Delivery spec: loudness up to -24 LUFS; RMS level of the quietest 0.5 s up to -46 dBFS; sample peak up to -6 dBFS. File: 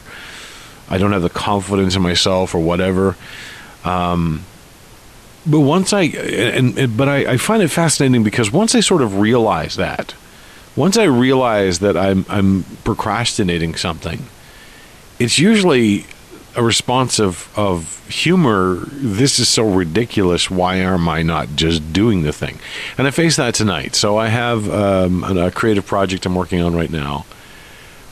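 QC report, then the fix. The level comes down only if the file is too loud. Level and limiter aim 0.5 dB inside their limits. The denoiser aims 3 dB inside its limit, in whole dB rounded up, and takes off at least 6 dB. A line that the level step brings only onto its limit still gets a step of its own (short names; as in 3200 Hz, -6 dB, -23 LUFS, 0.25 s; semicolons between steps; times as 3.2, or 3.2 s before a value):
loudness -15.5 LUFS: fail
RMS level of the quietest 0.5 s -41 dBFS: fail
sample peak -3.5 dBFS: fail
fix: gain -9 dB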